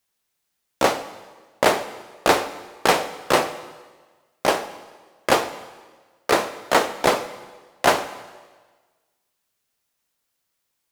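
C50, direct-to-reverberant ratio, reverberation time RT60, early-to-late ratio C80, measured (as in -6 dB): 13.5 dB, 11.5 dB, 1.4 s, 14.5 dB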